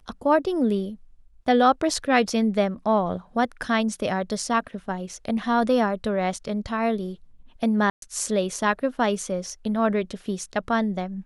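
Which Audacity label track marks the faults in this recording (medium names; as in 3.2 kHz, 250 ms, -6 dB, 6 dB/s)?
7.900000	8.020000	dropout 122 ms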